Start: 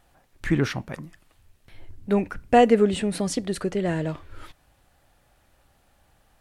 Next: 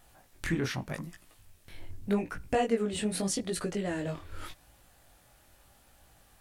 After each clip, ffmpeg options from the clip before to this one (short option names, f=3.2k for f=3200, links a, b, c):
-af "highshelf=f=4.9k:g=8.5,acompressor=threshold=-33dB:ratio=2,flanger=delay=17:depth=6.9:speed=0.84,volume=3dB"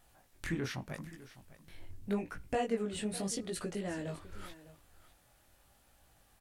-af "aecho=1:1:604:0.141,volume=-5.5dB"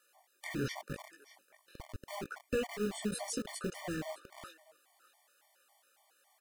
-filter_complex "[0:a]acrossover=split=440|1900[a][b][c];[a]acrusher=bits=6:mix=0:aa=0.000001[d];[d][b][c]amix=inputs=3:normalize=0,afftfilt=real='re*gt(sin(2*PI*3.6*pts/sr)*(1-2*mod(floor(b*sr/1024/600),2)),0)':imag='im*gt(sin(2*PI*3.6*pts/sr)*(1-2*mod(floor(b*sr/1024/600),2)),0)':win_size=1024:overlap=0.75,volume=2dB"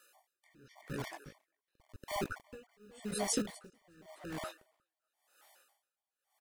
-filter_complex "[0:a]asplit=2[a][b];[b]adelay=361.5,volume=-9dB,highshelf=f=4k:g=-8.13[c];[a][c]amix=inputs=2:normalize=0,aeval=exprs='val(0)*pow(10,-33*(0.5-0.5*cos(2*PI*0.91*n/s))/20)':c=same,volume=6dB"